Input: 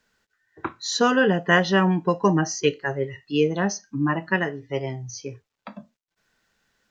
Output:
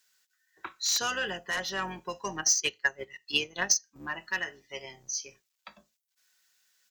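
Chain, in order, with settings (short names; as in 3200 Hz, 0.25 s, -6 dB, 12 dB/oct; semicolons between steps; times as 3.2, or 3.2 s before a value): octaver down 2 oct, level +1 dB; differentiator; comb 5.4 ms, depth 31%; sine folder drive 9 dB, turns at -16 dBFS; 1.37–1.79 bell 3900 Hz -5.5 dB 2.4 oct; 2.38–3.96 transient shaper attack +10 dB, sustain -8 dB; gain -6.5 dB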